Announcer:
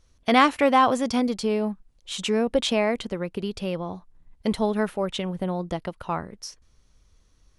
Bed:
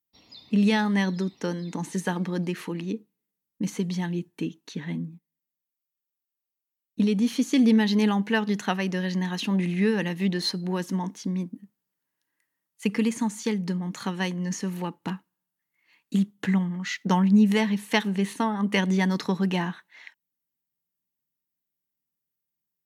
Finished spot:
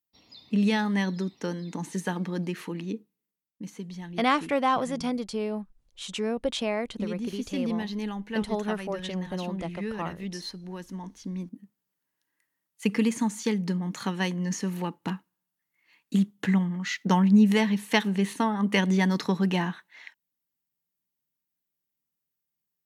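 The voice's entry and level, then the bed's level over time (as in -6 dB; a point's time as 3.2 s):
3.90 s, -6.0 dB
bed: 3.26 s -2.5 dB
3.55 s -10.5 dB
10.91 s -10.5 dB
11.88 s 0 dB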